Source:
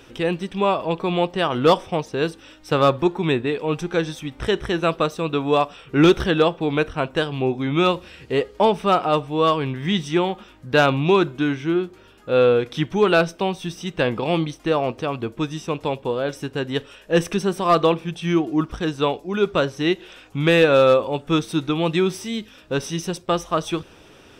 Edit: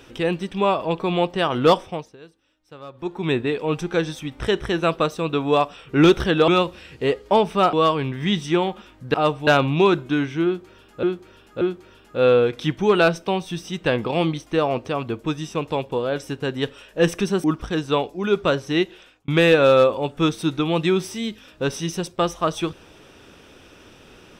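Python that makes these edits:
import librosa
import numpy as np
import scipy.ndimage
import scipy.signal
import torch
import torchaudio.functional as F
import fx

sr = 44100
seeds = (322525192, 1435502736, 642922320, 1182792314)

y = fx.edit(x, sr, fx.fade_down_up(start_s=1.72, length_s=1.66, db=-22.5, fade_s=0.45),
    fx.cut(start_s=6.48, length_s=1.29),
    fx.move(start_s=9.02, length_s=0.33, to_s=10.76),
    fx.repeat(start_s=11.74, length_s=0.58, count=3),
    fx.cut(start_s=17.57, length_s=0.97),
    fx.fade_out_span(start_s=19.91, length_s=0.47), tone=tone)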